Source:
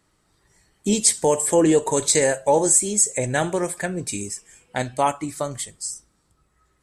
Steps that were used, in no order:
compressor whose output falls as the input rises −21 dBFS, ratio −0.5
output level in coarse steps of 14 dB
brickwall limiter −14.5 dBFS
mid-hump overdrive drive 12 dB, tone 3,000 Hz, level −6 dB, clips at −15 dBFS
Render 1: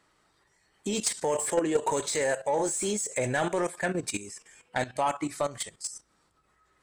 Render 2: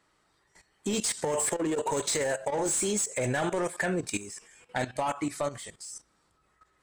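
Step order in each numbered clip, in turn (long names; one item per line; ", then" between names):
output level in coarse steps, then mid-hump overdrive, then brickwall limiter, then compressor whose output falls as the input rises
mid-hump overdrive, then compressor whose output falls as the input rises, then output level in coarse steps, then brickwall limiter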